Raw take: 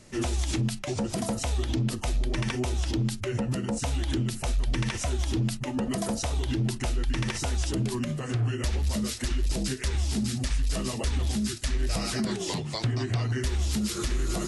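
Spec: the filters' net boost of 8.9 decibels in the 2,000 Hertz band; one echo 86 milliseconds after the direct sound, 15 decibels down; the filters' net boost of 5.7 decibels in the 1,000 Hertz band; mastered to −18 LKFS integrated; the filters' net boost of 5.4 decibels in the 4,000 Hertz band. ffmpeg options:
ffmpeg -i in.wav -af "equalizer=frequency=1000:width_type=o:gain=5,equalizer=frequency=2000:width_type=o:gain=8.5,equalizer=frequency=4000:width_type=o:gain=4,aecho=1:1:86:0.178,volume=9dB" out.wav

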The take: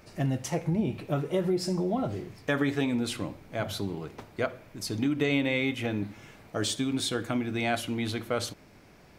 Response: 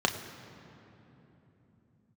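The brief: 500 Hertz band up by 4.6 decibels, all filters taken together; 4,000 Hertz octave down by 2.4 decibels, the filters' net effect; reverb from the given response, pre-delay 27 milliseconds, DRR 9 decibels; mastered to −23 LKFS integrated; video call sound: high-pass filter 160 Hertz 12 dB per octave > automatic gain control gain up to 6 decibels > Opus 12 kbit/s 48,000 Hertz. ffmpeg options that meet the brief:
-filter_complex "[0:a]equalizer=frequency=500:width_type=o:gain=6,equalizer=frequency=4000:width_type=o:gain=-3,asplit=2[link_01][link_02];[1:a]atrim=start_sample=2205,adelay=27[link_03];[link_02][link_03]afir=irnorm=-1:irlink=0,volume=-20dB[link_04];[link_01][link_04]amix=inputs=2:normalize=0,highpass=160,dynaudnorm=maxgain=6dB,volume=6dB" -ar 48000 -c:a libopus -b:a 12k

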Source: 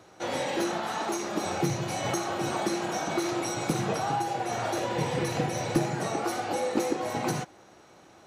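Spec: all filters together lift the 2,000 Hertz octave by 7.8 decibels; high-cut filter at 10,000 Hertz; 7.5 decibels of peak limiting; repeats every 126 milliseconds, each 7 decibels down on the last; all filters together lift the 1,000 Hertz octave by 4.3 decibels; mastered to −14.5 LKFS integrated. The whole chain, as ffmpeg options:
ffmpeg -i in.wav -af "lowpass=10000,equalizer=frequency=1000:width_type=o:gain=4,equalizer=frequency=2000:width_type=o:gain=8.5,alimiter=limit=-20.5dB:level=0:latency=1,aecho=1:1:126|252|378|504|630:0.447|0.201|0.0905|0.0407|0.0183,volume=14dB" out.wav

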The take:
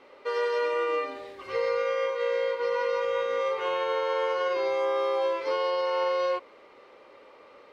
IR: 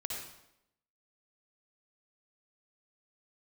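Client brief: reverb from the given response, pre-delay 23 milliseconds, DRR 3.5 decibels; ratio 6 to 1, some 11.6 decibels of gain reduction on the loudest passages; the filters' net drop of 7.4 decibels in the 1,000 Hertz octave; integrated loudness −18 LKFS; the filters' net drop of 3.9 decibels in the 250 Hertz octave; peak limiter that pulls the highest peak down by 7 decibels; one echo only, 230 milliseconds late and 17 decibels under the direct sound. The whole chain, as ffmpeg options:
-filter_complex "[0:a]equalizer=frequency=250:width_type=o:gain=-6,equalizer=frequency=1000:width_type=o:gain=-8.5,acompressor=threshold=-40dB:ratio=6,alimiter=level_in=14dB:limit=-24dB:level=0:latency=1,volume=-14dB,aecho=1:1:230:0.141,asplit=2[link_01][link_02];[1:a]atrim=start_sample=2205,adelay=23[link_03];[link_02][link_03]afir=irnorm=-1:irlink=0,volume=-4.5dB[link_04];[link_01][link_04]amix=inputs=2:normalize=0,volume=25dB"

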